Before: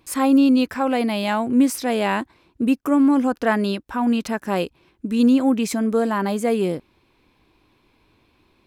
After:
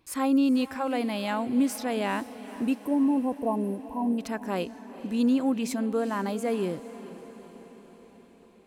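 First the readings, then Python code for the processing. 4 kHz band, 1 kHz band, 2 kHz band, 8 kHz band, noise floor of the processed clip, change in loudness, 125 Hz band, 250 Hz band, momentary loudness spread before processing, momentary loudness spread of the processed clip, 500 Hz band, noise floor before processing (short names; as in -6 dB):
-8.0 dB, -7.5 dB, -9.0 dB, -7.5 dB, -54 dBFS, -7.5 dB, -7.5 dB, -7.5 dB, 9 LU, 15 LU, -7.5 dB, -62 dBFS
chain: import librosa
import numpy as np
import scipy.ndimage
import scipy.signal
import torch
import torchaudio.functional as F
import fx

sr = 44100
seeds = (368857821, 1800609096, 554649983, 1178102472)

y = fx.spec_erase(x, sr, start_s=2.79, length_s=1.4, low_hz=1100.0, high_hz=8100.0)
y = fx.echo_diffused(y, sr, ms=456, feedback_pct=60, wet_db=-15.0)
y = F.gain(torch.from_numpy(y), -7.5).numpy()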